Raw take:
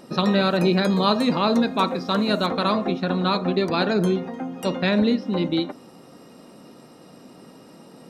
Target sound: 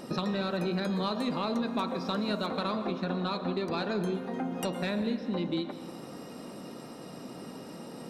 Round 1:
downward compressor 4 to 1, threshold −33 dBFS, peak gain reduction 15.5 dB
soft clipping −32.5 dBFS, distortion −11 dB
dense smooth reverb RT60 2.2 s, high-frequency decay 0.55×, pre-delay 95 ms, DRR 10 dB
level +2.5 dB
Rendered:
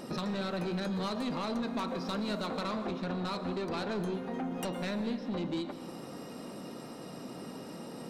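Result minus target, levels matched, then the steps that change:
soft clipping: distortion +15 dB
change: soft clipping −20.5 dBFS, distortion −27 dB

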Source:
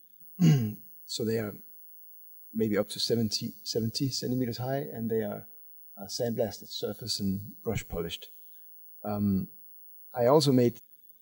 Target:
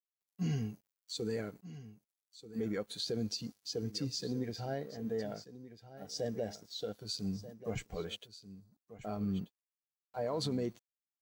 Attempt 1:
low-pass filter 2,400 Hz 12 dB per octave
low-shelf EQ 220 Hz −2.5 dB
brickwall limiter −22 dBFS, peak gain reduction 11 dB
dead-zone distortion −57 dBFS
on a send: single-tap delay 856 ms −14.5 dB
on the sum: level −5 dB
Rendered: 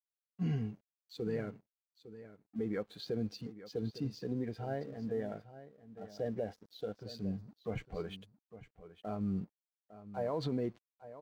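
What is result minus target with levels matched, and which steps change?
8,000 Hz band −16.0 dB; echo 380 ms early
change: low-pass filter 8,300 Hz 12 dB per octave
change: single-tap delay 1,236 ms −14.5 dB

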